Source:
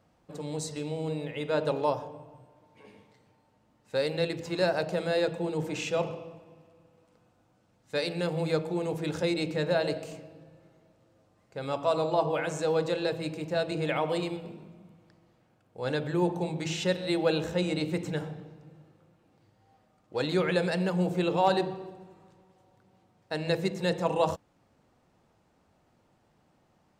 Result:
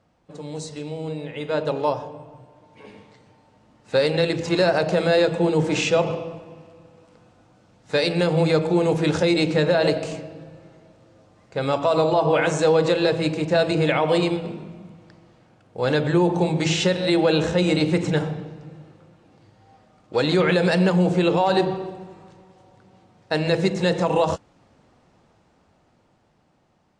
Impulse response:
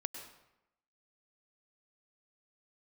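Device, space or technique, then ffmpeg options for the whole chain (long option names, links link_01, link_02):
low-bitrate web radio: -af "lowpass=7700,dynaudnorm=framelen=560:gausssize=9:maxgain=10dB,alimiter=limit=-11.5dB:level=0:latency=1:release=88,volume=2dB" -ar 24000 -c:a aac -b:a 48k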